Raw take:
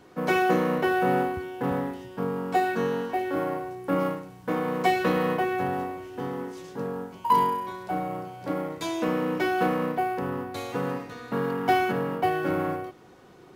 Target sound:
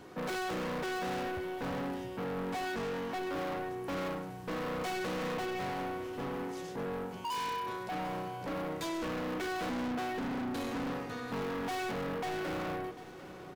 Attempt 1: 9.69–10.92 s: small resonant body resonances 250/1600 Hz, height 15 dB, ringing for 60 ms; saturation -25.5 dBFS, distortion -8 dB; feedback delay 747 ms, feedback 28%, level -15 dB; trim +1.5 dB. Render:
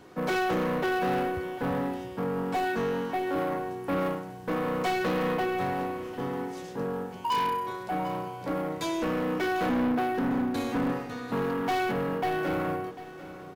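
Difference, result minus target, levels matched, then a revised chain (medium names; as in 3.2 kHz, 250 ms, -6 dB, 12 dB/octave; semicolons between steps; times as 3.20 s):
saturation: distortion -5 dB
9.69–10.92 s: small resonant body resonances 250/1600 Hz, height 15 dB, ringing for 60 ms; saturation -36 dBFS, distortion -3 dB; feedback delay 747 ms, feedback 28%, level -15 dB; trim +1.5 dB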